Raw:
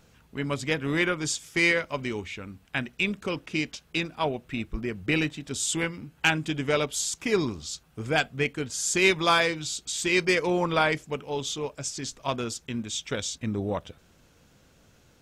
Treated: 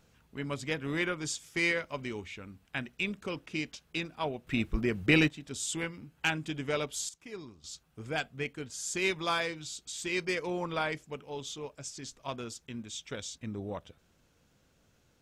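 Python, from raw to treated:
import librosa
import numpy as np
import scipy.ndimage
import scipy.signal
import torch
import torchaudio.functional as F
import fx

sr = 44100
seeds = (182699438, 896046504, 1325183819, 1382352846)

y = fx.gain(x, sr, db=fx.steps((0.0, -6.5), (4.47, 1.5), (5.28, -7.0), (7.09, -19.0), (7.64, -9.0)))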